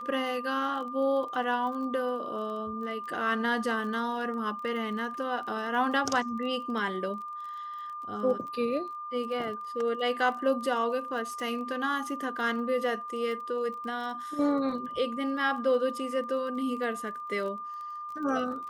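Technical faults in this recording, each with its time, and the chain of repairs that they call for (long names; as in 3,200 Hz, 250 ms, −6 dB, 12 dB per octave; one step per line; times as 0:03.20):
surface crackle 28 per second −39 dBFS
whistle 1,200 Hz −36 dBFS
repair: click removal
notch filter 1,200 Hz, Q 30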